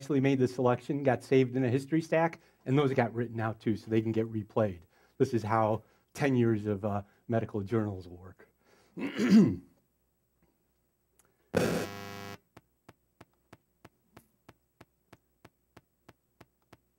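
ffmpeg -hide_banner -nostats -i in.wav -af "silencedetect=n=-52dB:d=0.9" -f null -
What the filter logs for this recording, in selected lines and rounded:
silence_start: 9.65
silence_end: 11.19 | silence_duration: 1.55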